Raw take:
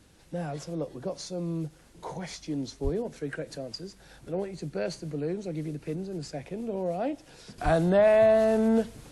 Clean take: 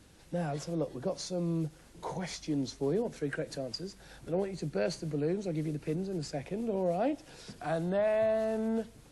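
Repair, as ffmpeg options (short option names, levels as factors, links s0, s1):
-filter_complex "[0:a]asplit=3[s0][s1][s2];[s0]afade=t=out:st=2.83:d=0.02[s3];[s1]highpass=f=140:w=0.5412,highpass=f=140:w=1.3066,afade=t=in:st=2.83:d=0.02,afade=t=out:st=2.95:d=0.02[s4];[s2]afade=t=in:st=2.95:d=0.02[s5];[s3][s4][s5]amix=inputs=3:normalize=0,asplit=3[s6][s7][s8];[s6]afade=t=out:st=7.64:d=0.02[s9];[s7]highpass=f=140:w=0.5412,highpass=f=140:w=1.3066,afade=t=in:st=7.64:d=0.02,afade=t=out:st=7.76:d=0.02[s10];[s8]afade=t=in:st=7.76:d=0.02[s11];[s9][s10][s11]amix=inputs=3:normalize=0,asetnsamples=n=441:p=0,asendcmd='7.58 volume volume -8.5dB',volume=1"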